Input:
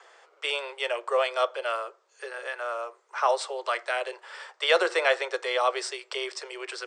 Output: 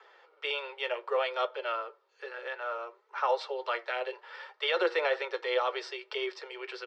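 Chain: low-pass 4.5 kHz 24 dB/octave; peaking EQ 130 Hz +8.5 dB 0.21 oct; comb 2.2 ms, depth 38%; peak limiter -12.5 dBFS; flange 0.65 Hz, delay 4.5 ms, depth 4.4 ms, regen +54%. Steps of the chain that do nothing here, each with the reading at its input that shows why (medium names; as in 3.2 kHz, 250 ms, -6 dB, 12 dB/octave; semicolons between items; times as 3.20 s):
peaking EQ 130 Hz: input has nothing below 320 Hz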